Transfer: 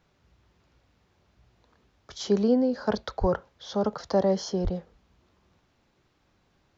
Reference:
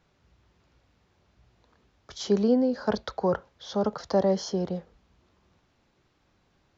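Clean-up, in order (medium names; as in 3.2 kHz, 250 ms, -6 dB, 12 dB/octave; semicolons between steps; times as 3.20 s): 3.20–3.32 s: high-pass 140 Hz 24 dB/octave; 4.63–4.75 s: high-pass 140 Hz 24 dB/octave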